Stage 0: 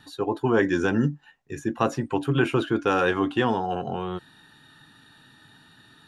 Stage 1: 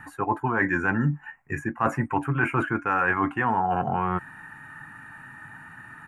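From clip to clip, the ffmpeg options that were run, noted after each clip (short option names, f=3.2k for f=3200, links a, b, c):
-af "firequalizer=gain_entry='entry(140,0);entry(440,-9);entry(860,5);entry(2200,6);entry(3600,-28);entry(7700,-6)':delay=0.05:min_phase=1,areverse,acompressor=threshold=-28dB:ratio=6,areverse,volume=7.5dB"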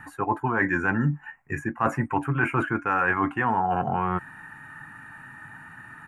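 -af anull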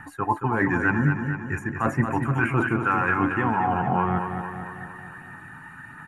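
-filter_complex "[0:a]aphaser=in_gain=1:out_gain=1:delay=1.1:decay=0.36:speed=1.5:type=triangular,asplit=2[a][b];[b]aecho=0:1:226|452|678|904|1130|1356|1582:0.447|0.259|0.15|0.0872|0.0505|0.0293|0.017[c];[a][c]amix=inputs=2:normalize=0"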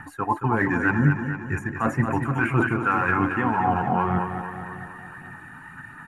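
-af "aphaser=in_gain=1:out_gain=1:delay=4.3:decay=0.28:speed=1.9:type=sinusoidal"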